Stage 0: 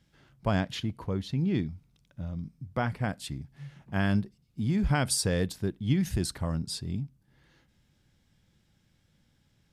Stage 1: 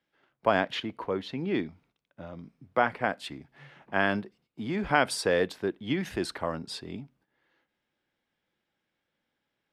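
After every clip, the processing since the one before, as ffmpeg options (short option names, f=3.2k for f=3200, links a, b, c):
-filter_complex "[0:a]agate=range=-12dB:threshold=-57dB:ratio=16:detection=peak,acrossover=split=300 3400:gain=0.0708 1 0.158[a][b][c];[a][b][c]amix=inputs=3:normalize=0,volume=7.5dB"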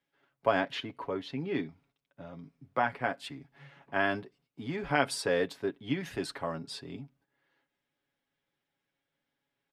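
-af "aecho=1:1:7.2:0.59,volume=-4.5dB"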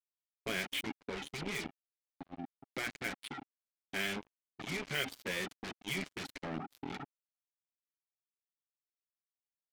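-filter_complex "[0:a]asplit=3[a][b][c];[a]bandpass=f=270:t=q:w=8,volume=0dB[d];[b]bandpass=f=2.29k:t=q:w=8,volume=-6dB[e];[c]bandpass=f=3.01k:t=q:w=8,volume=-9dB[f];[d][e][f]amix=inputs=3:normalize=0,acrusher=bits=7:mix=0:aa=0.5,afftfilt=real='re*lt(hypot(re,im),0.0316)':imag='im*lt(hypot(re,im),0.0316)':win_size=1024:overlap=0.75,volume=12.5dB"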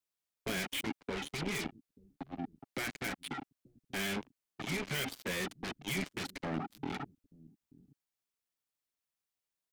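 -filter_complex "[0:a]acrossover=split=290|7500[a][b][c];[a]aecho=1:1:884:0.133[d];[b]asoftclip=type=tanh:threshold=-37.5dB[e];[d][e][c]amix=inputs=3:normalize=0,volume=4.5dB"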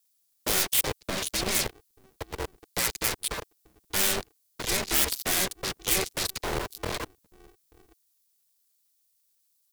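-filter_complex "[0:a]acrossover=split=270|2000[a][b][c];[b]acrusher=bits=6:mix=0:aa=0.000001[d];[c]aexciter=amount=2.5:drive=7.8:freq=3.8k[e];[a][d][e]amix=inputs=3:normalize=0,aeval=exprs='val(0)*sgn(sin(2*PI*190*n/s))':c=same,volume=6dB"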